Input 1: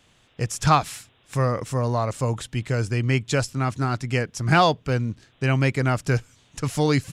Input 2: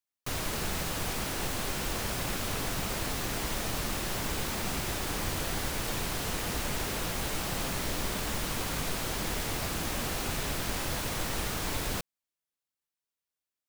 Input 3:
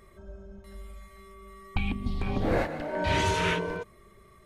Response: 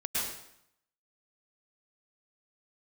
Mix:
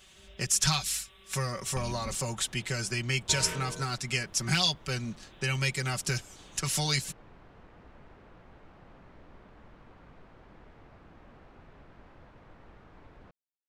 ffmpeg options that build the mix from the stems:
-filter_complex "[0:a]tiltshelf=f=1.4k:g=-6.5,aecho=1:1:5.3:0.82,acrossover=split=150|3000[a][b][c];[b]acompressor=threshold=-31dB:ratio=6[d];[a][d][c]amix=inputs=3:normalize=0,volume=-2dB[e];[1:a]lowpass=1.6k,adelay=1300,volume=-19dB[f];[2:a]volume=-10.5dB,asplit=3[g][h][i];[g]atrim=end=2.15,asetpts=PTS-STARTPTS,afade=t=out:st=2.146:d=0.004:c=hsin[j];[h]atrim=start=2.15:end=3.29,asetpts=PTS-STARTPTS,volume=0[k];[i]atrim=start=3.29,asetpts=PTS-STARTPTS,afade=t=in:d=0.004:c=hsin[l];[j][k][l]concat=n=3:v=0:a=1[m];[e][f][m]amix=inputs=3:normalize=0"

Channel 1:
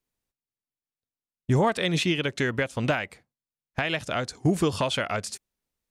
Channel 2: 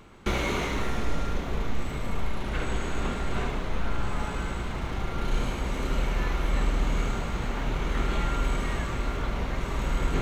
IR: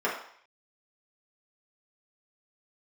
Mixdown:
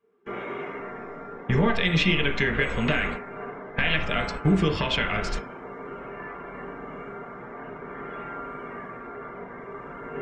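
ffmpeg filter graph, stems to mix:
-filter_complex "[0:a]firequalizer=gain_entry='entry(510,0);entry(2000,8);entry(3700,-1);entry(8900,-16)':delay=0.05:min_phase=1,acrossover=split=270|3000[a][b][c];[b]acompressor=threshold=-39dB:ratio=4[d];[a][d][c]amix=inputs=3:normalize=0,volume=2dB,asplit=3[e][f][g];[f]volume=-8dB[h];[1:a]volume=-4.5dB,asplit=2[i][j];[j]volume=-12dB[k];[g]apad=whole_len=450347[l];[i][l]sidechaingate=range=-53dB:threshold=-44dB:ratio=16:detection=peak[m];[2:a]atrim=start_sample=2205[n];[h][k]amix=inputs=2:normalize=0[o];[o][n]afir=irnorm=-1:irlink=0[p];[e][m][p]amix=inputs=3:normalize=0,afftdn=nr=17:nf=-46"

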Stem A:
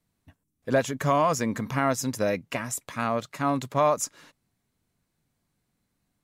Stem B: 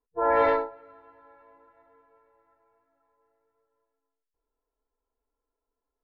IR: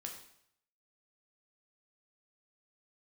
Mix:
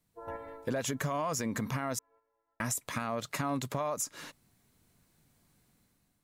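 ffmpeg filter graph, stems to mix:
-filter_complex "[0:a]highshelf=f=7.4k:g=5,dynaudnorm=f=150:g=7:m=8dB,alimiter=limit=-16dB:level=0:latency=1:release=98,volume=-1dB,asplit=3[a][b][c];[a]atrim=end=1.99,asetpts=PTS-STARTPTS,afade=t=out:st=1.986:d=0.004:c=hsin[d];[b]atrim=start=1.99:end=2.6,asetpts=PTS-STARTPTS,volume=0[e];[c]atrim=start=2.6,asetpts=PTS-STARTPTS,afade=t=in:d=0.004:c=hsin[f];[d][e][f]concat=n=3:v=0:a=1,asplit=2[g][h];[1:a]acrossover=split=250[i][j];[j]acompressor=threshold=-33dB:ratio=4[k];[i][k]amix=inputs=2:normalize=0,volume=-7dB[l];[h]apad=whole_len=270717[m];[l][m]sidechaingate=range=-7dB:threshold=-57dB:ratio=16:detection=peak[n];[g][n]amix=inputs=2:normalize=0,acompressor=threshold=-32dB:ratio=3"

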